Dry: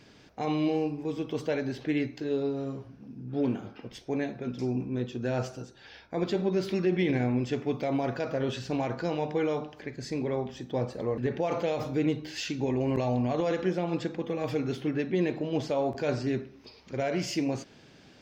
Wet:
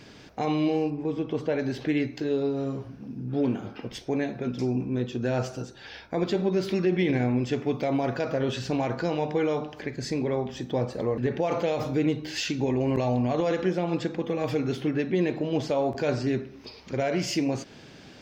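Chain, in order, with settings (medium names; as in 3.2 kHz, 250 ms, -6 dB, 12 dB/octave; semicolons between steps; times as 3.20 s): 0.90–1.59 s: low-pass 2 kHz 6 dB/octave; in parallel at +1.5 dB: compression, threshold -36 dBFS, peak gain reduction 14 dB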